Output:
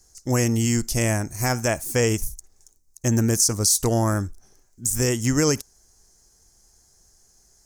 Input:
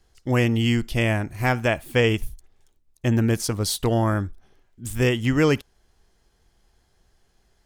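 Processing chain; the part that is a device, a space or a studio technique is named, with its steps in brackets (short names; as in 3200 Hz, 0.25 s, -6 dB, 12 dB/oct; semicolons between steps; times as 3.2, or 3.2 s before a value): over-bright horn tweeter (resonant high shelf 4500 Hz +12 dB, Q 3; limiter -8.5 dBFS, peak gain reduction 9 dB)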